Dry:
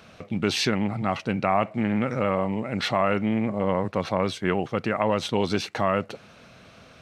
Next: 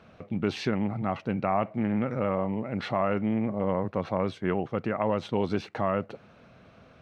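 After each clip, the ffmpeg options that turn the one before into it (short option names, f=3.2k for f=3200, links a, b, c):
-af "lowpass=f=1.3k:p=1,volume=-2.5dB"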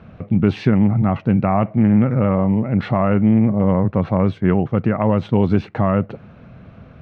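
-af "bass=f=250:g=11,treble=f=4k:g=-13,volume=6.5dB"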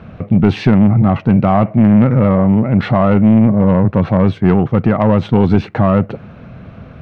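-af "acontrast=84"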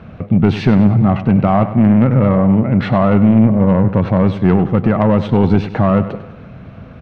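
-af "aecho=1:1:99|198|297|396|495:0.224|0.11|0.0538|0.0263|0.0129,volume=-1dB"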